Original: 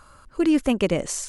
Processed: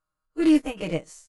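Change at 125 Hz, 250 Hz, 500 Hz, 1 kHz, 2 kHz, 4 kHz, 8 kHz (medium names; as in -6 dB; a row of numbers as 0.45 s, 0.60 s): -4.0 dB, -0.5 dB, -5.0 dB, -5.0 dB, -3.5 dB, -4.0 dB, under -10 dB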